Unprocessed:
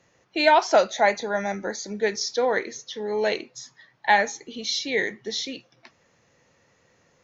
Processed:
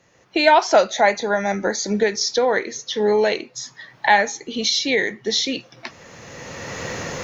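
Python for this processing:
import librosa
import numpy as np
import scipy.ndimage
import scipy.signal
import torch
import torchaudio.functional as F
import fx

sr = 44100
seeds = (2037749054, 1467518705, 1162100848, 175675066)

y = fx.recorder_agc(x, sr, target_db=-13.5, rise_db_per_s=18.0, max_gain_db=30)
y = F.gain(torch.from_numpy(y), 3.5).numpy()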